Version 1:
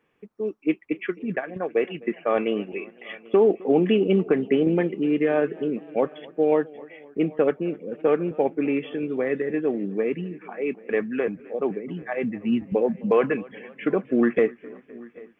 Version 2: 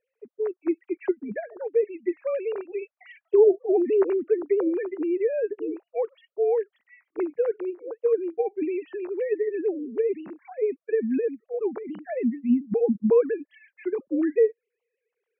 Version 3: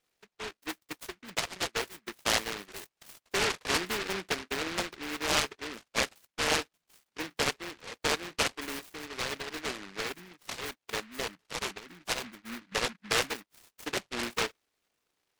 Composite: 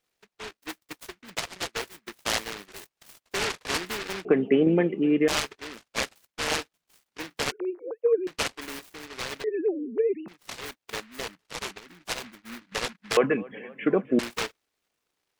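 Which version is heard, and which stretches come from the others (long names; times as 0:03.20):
3
0:04.25–0:05.28: punch in from 1
0:07.52–0:08.27: punch in from 2
0:09.44–0:10.28: punch in from 2
0:13.17–0:14.19: punch in from 1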